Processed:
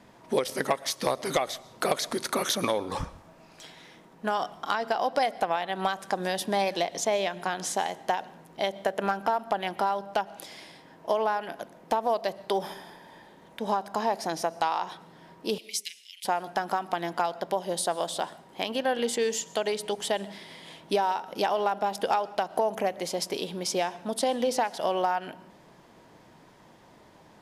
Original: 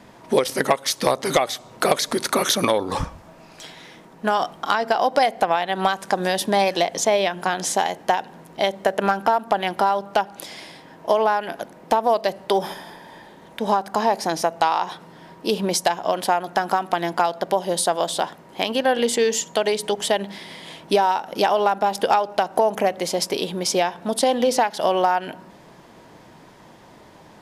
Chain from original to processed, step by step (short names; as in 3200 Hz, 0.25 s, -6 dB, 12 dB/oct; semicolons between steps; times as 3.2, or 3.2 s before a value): 15.58–16.25 Chebyshev high-pass 2100 Hz, order 6; on a send: reverb RT60 0.55 s, pre-delay 85 ms, DRR 21 dB; on the sum: gain -7.5 dB